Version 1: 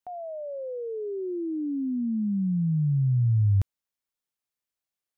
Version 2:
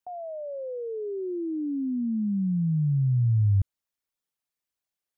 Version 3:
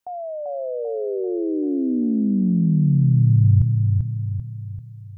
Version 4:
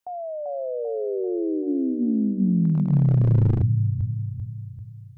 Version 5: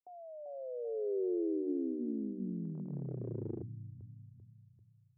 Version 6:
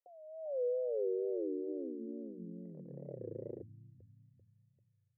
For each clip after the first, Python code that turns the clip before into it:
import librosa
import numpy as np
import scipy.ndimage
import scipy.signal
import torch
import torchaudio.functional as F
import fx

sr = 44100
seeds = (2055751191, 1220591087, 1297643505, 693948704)

y1 = fx.envelope_sharpen(x, sr, power=1.5)
y2 = fx.echo_feedback(y1, sr, ms=391, feedback_pct=47, wet_db=-4.0)
y2 = y2 * 10.0 ** (6.0 / 20.0)
y3 = np.minimum(y2, 2.0 * 10.0 ** (-11.5 / 20.0) - y2)
y3 = fx.hum_notches(y3, sr, base_hz=50, count=6)
y3 = y3 * 10.0 ** (-1.5 / 20.0)
y4 = fx.bandpass_q(y3, sr, hz=380.0, q=2.7)
y4 = y4 * 10.0 ** (-7.0 / 20.0)
y5 = fx.formant_cascade(y4, sr, vowel='e')
y5 = fx.wow_flutter(y5, sr, seeds[0], rate_hz=2.1, depth_cents=120.0)
y5 = y5 * 10.0 ** (10.0 / 20.0)